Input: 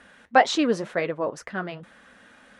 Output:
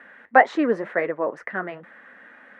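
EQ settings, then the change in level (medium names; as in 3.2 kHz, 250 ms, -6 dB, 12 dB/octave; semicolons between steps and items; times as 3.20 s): dynamic bell 2.8 kHz, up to -6 dB, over -39 dBFS, Q 0.94; three-band isolator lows -17 dB, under 210 Hz, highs -21 dB, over 2.4 kHz; peaking EQ 1.9 kHz +9.5 dB 0.47 oct; +2.5 dB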